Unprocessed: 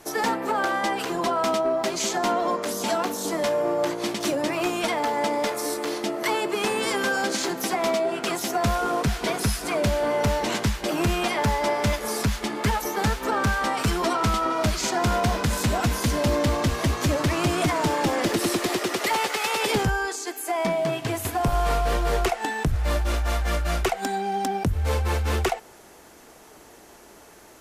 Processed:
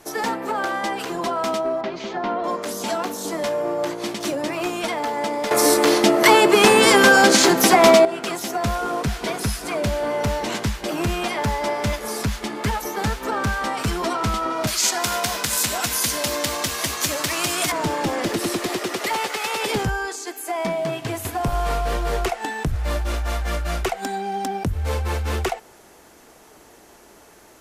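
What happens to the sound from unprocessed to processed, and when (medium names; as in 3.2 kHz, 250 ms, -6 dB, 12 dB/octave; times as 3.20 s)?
1.81–2.44 s: distance through air 280 m
5.51–8.05 s: gain +12 dB
14.67–17.72 s: tilt EQ +3.5 dB/octave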